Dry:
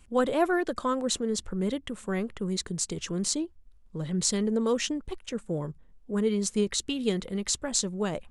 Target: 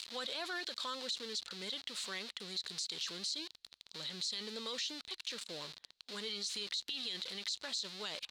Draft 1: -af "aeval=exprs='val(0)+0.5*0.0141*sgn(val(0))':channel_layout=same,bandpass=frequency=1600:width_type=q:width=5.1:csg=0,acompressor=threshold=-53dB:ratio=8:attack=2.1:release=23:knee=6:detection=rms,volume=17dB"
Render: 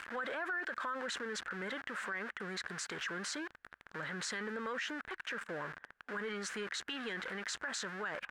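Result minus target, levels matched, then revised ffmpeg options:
2,000 Hz band +9.5 dB
-af "aeval=exprs='val(0)+0.5*0.0141*sgn(val(0))':channel_layout=same,bandpass=frequency=4100:width_type=q:width=5.1:csg=0,acompressor=threshold=-53dB:ratio=8:attack=2.1:release=23:knee=6:detection=rms,volume=17dB"

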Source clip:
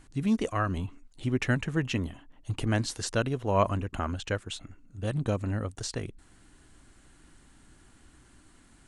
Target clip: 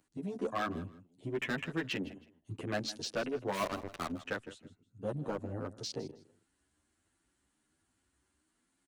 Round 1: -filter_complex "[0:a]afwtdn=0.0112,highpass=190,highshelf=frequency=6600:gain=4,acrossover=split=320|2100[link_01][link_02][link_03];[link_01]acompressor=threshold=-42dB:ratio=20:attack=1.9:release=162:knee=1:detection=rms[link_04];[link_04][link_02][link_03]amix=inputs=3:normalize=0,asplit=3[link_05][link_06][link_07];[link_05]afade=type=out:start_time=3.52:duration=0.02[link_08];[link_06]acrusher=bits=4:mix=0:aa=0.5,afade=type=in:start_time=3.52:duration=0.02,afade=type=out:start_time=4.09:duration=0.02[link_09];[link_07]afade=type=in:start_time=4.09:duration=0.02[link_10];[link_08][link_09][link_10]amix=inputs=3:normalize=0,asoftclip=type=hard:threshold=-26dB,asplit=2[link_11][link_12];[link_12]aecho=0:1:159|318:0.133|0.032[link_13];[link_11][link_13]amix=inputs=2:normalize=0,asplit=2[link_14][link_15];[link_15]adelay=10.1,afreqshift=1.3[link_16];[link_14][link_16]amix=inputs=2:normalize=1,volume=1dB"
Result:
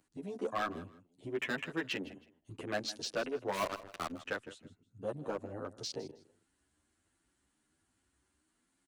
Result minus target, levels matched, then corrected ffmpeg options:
downward compressor: peak gain reduction +8.5 dB
-filter_complex "[0:a]afwtdn=0.0112,highpass=190,highshelf=frequency=6600:gain=4,acrossover=split=320|2100[link_01][link_02][link_03];[link_01]acompressor=threshold=-33dB:ratio=20:attack=1.9:release=162:knee=1:detection=rms[link_04];[link_04][link_02][link_03]amix=inputs=3:normalize=0,asplit=3[link_05][link_06][link_07];[link_05]afade=type=out:start_time=3.52:duration=0.02[link_08];[link_06]acrusher=bits=4:mix=0:aa=0.5,afade=type=in:start_time=3.52:duration=0.02,afade=type=out:start_time=4.09:duration=0.02[link_09];[link_07]afade=type=in:start_time=4.09:duration=0.02[link_10];[link_08][link_09][link_10]amix=inputs=3:normalize=0,asoftclip=type=hard:threshold=-26dB,asplit=2[link_11][link_12];[link_12]aecho=0:1:159|318:0.133|0.032[link_13];[link_11][link_13]amix=inputs=2:normalize=0,asplit=2[link_14][link_15];[link_15]adelay=10.1,afreqshift=1.3[link_16];[link_14][link_16]amix=inputs=2:normalize=1,volume=1dB"

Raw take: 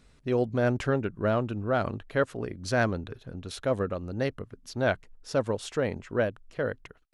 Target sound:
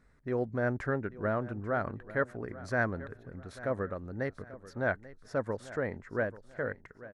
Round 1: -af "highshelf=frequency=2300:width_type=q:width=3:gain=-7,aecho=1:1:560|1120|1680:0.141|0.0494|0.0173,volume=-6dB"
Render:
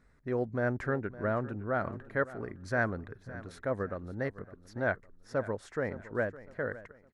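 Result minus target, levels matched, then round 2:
echo 279 ms early
-af "highshelf=frequency=2300:width_type=q:width=3:gain=-7,aecho=1:1:839|1678|2517:0.141|0.0494|0.0173,volume=-6dB"

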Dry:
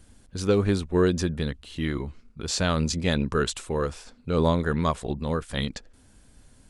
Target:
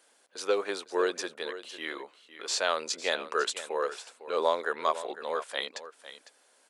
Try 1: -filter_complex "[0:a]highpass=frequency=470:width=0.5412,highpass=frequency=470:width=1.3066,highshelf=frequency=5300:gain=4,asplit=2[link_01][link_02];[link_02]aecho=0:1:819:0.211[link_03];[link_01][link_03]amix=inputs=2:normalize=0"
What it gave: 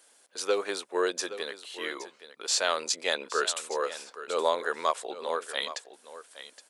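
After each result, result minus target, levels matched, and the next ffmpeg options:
echo 315 ms late; 8,000 Hz band +4.0 dB
-filter_complex "[0:a]highpass=frequency=470:width=0.5412,highpass=frequency=470:width=1.3066,highshelf=frequency=5300:gain=4,asplit=2[link_01][link_02];[link_02]aecho=0:1:504:0.211[link_03];[link_01][link_03]amix=inputs=2:normalize=0"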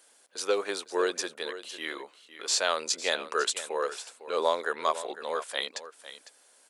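8,000 Hz band +4.0 dB
-filter_complex "[0:a]highpass=frequency=470:width=0.5412,highpass=frequency=470:width=1.3066,highshelf=frequency=5300:gain=-4,asplit=2[link_01][link_02];[link_02]aecho=0:1:504:0.211[link_03];[link_01][link_03]amix=inputs=2:normalize=0"

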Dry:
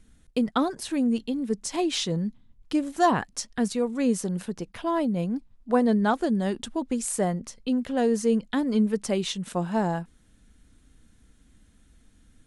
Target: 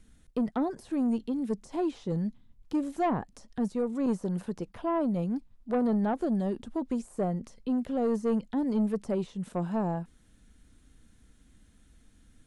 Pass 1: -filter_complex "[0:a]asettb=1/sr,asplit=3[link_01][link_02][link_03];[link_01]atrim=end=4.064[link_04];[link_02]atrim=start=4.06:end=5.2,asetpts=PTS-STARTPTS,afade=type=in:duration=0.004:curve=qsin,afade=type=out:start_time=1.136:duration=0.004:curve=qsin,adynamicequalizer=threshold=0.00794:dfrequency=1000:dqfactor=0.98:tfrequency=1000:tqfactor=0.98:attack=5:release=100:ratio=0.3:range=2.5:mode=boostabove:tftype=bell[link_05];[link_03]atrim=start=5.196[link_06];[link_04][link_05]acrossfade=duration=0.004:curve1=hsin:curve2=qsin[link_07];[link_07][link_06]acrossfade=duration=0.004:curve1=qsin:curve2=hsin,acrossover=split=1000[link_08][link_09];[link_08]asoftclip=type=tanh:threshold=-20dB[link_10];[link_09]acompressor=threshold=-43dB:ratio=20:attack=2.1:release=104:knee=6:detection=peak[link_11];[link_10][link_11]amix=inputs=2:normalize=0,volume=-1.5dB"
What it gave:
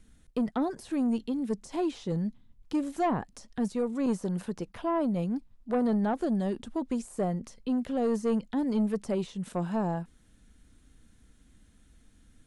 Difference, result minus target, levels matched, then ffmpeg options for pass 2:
downward compressor: peak gain reduction −5.5 dB
-filter_complex "[0:a]asettb=1/sr,asplit=3[link_01][link_02][link_03];[link_01]atrim=end=4.064[link_04];[link_02]atrim=start=4.06:end=5.2,asetpts=PTS-STARTPTS,afade=type=in:duration=0.004:curve=qsin,afade=type=out:start_time=1.136:duration=0.004:curve=qsin,adynamicequalizer=threshold=0.00794:dfrequency=1000:dqfactor=0.98:tfrequency=1000:tqfactor=0.98:attack=5:release=100:ratio=0.3:range=2.5:mode=boostabove:tftype=bell[link_05];[link_03]atrim=start=5.196[link_06];[link_04][link_05]acrossfade=duration=0.004:curve1=hsin:curve2=qsin[link_07];[link_07][link_06]acrossfade=duration=0.004:curve1=qsin:curve2=hsin,acrossover=split=1000[link_08][link_09];[link_08]asoftclip=type=tanh:threshold=-20dB[link_10];[link_09]acompressor=threshold=-49dB:ratio=20:attack=2.1:release=104:knee=6:detection=peak[link_11];[link_10][link_11]amix=inputs=2:normalize=0,volume=-1.5dB"

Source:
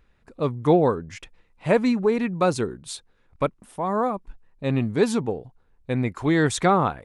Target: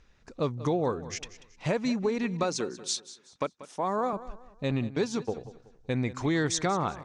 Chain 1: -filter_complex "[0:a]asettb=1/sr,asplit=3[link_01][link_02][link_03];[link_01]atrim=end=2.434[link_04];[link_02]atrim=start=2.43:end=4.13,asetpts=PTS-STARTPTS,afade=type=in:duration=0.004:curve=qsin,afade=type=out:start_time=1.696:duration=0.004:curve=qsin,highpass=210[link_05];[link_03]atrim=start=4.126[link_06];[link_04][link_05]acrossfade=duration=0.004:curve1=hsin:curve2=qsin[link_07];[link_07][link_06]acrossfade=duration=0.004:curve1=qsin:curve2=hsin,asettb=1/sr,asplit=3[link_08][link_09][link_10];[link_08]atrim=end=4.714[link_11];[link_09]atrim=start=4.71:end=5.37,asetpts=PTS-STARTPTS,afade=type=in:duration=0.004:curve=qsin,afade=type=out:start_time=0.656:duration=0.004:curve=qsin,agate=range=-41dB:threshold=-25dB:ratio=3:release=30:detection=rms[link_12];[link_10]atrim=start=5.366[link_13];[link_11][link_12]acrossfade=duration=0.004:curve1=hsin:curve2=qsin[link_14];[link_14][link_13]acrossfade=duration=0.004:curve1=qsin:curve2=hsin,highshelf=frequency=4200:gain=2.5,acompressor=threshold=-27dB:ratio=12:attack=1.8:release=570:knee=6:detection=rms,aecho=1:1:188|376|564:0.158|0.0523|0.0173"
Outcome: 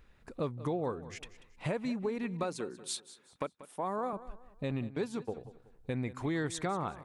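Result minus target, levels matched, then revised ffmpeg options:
downward compressor: peak gain reduction +6.5 dB; 8,000 Hz band −3.0 dB
-filter_complex "[0:a]asettb=1/sr,asplit=3[link_01][link_02][link_03];[link_01]atrim=end=2.434[link_04];[link_02]atrim=start=2.43:end=4.13,asetpts=PTS-STARTPTS,afade=type=in:duration=0.004:curve=qsin,afade=type=out:start_time=1.696:duration=0.004:curve=qsin,highpass=210[link_05];[link_03]atrim=start=4.126[link_06];[link_04][link_05]acrossfade=duration=0.004:curve1=hsin:curve2=qsin[link_07];[link_07][link_06]acrossfade=duration=0.004:curve1=qsin:curve2=hsin,asettb=1/sr,asplit=3[link_08][link_09][link_10];[link_08]atrim=end=4.714[link_11];[link_09]atrim=start=4.71:end=5.37,asetpts=PTS-STARTPTS,afade=type=in:duration=0.004:curve=qsin,afade=type=out:start_time=0.656:duration=0.004:curve=qsin,agate=range=-41dB:threshold=-25dB:ratio=3:release=30:detection=rms[link_12];[link_10]atrim=start=5.366[link_13];[link_11][link_12]acrossfade=duration=0.004:curve1=hsin:curve2=qsin[link_14];[link_14][link_13]acrossfade=duration=0.004:curve1=qsin:curve2=hsin,lowpass=frequency=6000:width_type=q:width=3.6,highshelf=frequency=4200:gain=2.5,acompressor=threshold=-20dB:ratio=12:attack=1.8:release=570:knee=6:detection=rms,aecho=1:1:188|376|564:0.158|0.0523|0.0173"

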